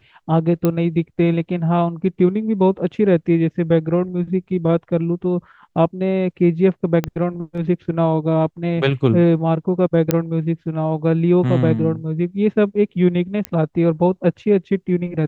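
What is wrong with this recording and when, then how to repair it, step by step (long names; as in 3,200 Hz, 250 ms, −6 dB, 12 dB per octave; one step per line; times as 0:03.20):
0:00.65: click −6 dBFS
0:07.04: click −8 dBFS
0:10.11: click −2 dBFS
0:13.45: click −8 dBFS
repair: click removal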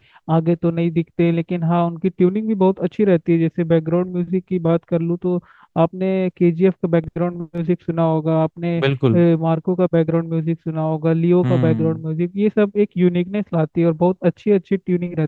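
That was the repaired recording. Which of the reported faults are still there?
0:07.04: click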